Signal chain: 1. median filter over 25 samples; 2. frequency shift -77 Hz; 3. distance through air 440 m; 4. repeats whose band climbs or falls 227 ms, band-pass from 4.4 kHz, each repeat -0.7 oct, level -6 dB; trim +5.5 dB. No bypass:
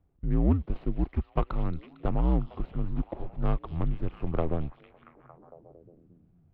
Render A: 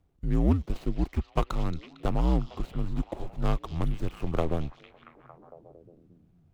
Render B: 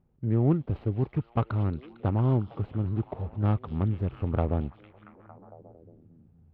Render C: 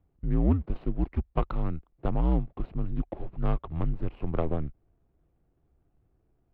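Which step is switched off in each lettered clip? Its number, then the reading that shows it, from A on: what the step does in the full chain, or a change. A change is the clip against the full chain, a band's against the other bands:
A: 3, 2 kHz band +3.5 dB; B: 2, 125 Hz band +3.5 dB; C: 4, echo-to-direct -10.0 dB to none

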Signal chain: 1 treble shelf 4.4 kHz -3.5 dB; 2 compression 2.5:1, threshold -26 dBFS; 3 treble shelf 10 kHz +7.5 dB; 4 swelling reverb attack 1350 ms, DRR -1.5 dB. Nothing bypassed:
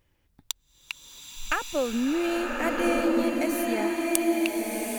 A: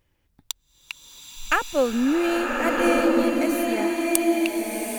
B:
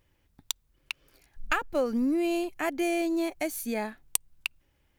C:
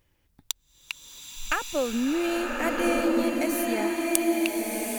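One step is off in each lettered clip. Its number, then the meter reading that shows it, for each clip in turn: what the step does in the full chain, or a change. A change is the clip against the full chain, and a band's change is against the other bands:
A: 2, momentary loudness spread change +4 LU; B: 4, momentary loudness spread change -5 LU; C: 1, 8 kHz band +2.0 dB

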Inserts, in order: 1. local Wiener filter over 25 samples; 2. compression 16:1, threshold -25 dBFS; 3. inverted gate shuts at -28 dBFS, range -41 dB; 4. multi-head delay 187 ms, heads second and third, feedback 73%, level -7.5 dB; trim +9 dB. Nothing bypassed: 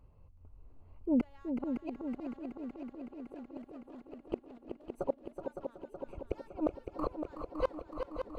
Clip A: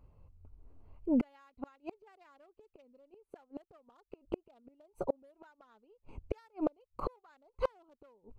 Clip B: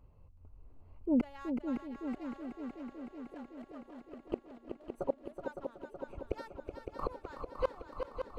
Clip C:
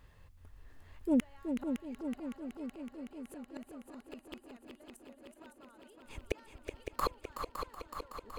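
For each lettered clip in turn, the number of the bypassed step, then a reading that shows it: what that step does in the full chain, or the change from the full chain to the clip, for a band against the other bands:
4, echo-to-direct -1.5 dB to none; 2, mean gain reduction 3.5 dB; 1, 2 kHz band +7.0 dB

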